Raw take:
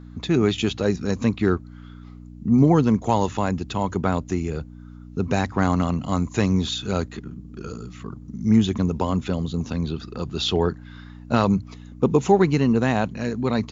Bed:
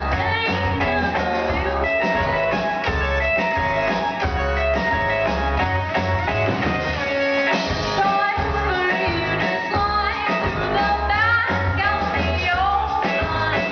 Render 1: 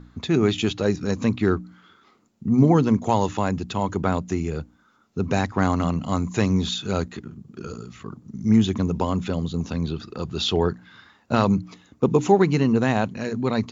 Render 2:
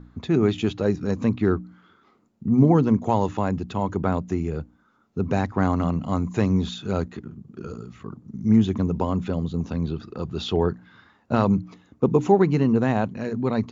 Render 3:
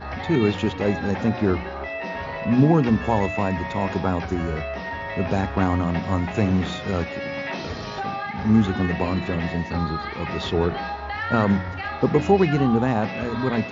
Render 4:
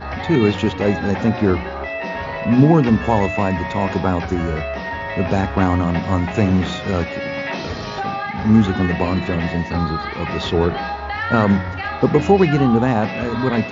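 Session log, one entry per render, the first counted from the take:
hum removal 60 Hz, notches 5
high-shelf EQ 2,200 Hz −10.5 dB
mix in bed −10.5 dB
level +4.5 dB; brickwall limiter −1 dBFS, peak gain reduction 1 dB

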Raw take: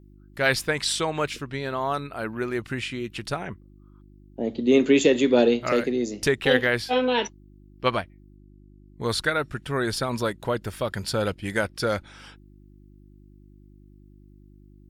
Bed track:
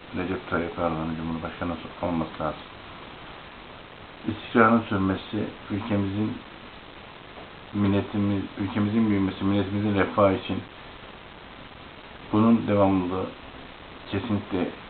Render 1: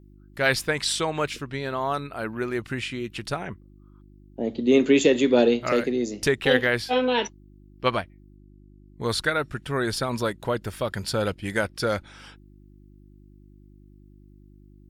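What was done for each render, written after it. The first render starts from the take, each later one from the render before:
no processing that can be heard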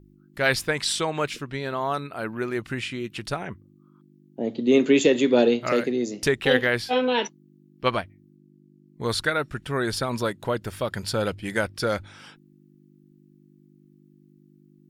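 hum removal 50 Hz, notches 2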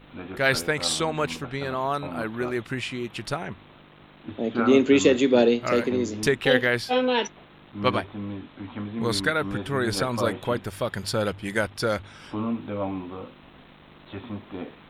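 mix in bed track −9 dB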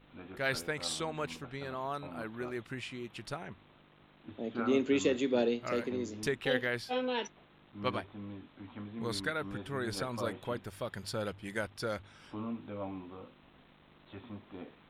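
level −11 dB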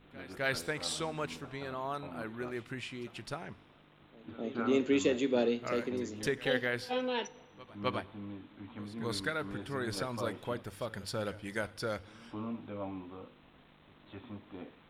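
echo ahead of the sound 259 ms −19 dB
feedback delay network reverb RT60 1.3 s, high-frequency decay 0.95×, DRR 19.5 dB

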